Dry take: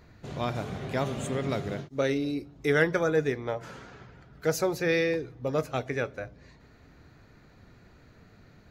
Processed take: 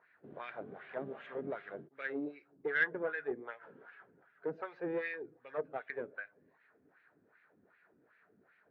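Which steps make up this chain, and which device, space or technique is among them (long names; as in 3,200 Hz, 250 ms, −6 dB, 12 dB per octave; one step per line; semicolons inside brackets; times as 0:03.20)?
wah-wah guitar rig (LFO wah 2.6 Hz 250–2,300 Hz, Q 2.2; tube saturation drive 23 dB, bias 0.45; loudspeaker in its box 110–3,500 Hz, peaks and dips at 120 Hz −5 dB, 250 Hz −3 dB, 440 Hz +3 dB, 1,600 Hz +9 dB)
level −3.5 dB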